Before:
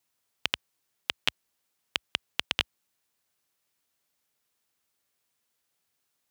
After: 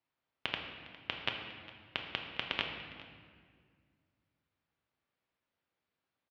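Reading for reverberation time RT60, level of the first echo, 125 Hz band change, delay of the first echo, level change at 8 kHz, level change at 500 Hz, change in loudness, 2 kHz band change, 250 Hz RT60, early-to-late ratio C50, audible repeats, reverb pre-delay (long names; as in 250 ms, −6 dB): 1.9 s, −19.0 dB, 0.0 dB, 407 ms, below −20 dB, −1.0 dB, −7.0 dB, −4.5 dB, 2.7 s, 4.5 dB, 1, 3 ms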